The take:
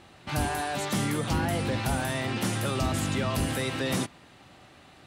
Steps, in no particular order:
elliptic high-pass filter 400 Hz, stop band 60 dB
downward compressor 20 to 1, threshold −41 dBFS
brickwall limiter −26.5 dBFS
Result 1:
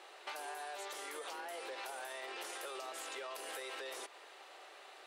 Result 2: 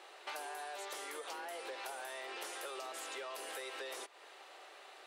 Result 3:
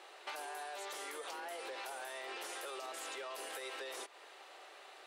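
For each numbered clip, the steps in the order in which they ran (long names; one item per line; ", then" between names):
brickwall limiter, then elliptic high-pass filter, then downward compressor
elliptic high-pass filter, then downward compressor, then brickwall limiter
elliptic high-pass filter, then brickwall limiter, then downward compressor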